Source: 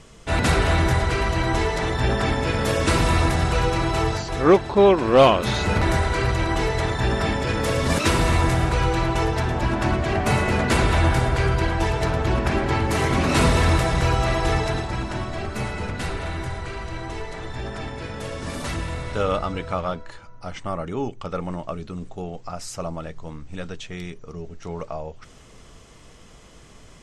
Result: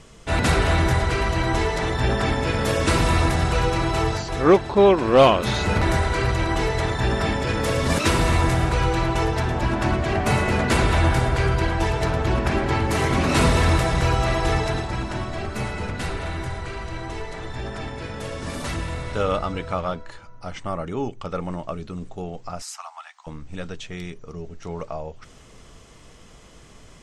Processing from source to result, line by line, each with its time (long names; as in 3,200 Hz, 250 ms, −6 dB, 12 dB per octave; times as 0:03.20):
0:22.62–0:23.27: Butterworth high-pass 760 Hz 72 dB per octave